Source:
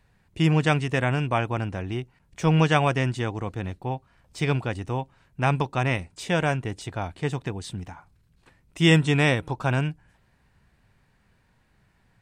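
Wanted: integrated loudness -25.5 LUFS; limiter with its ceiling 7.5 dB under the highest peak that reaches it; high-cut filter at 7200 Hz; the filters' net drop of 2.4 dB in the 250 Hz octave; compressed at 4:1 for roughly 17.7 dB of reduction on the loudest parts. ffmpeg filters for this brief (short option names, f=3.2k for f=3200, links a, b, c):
-af "lowpass=7.2k,equalizer=f=250:t=o:g=-4.5,acompressor=threshold=-37dB:ratio=4,volume=17.5dB,alimiter=limit=-14dB:level=0:latency=1"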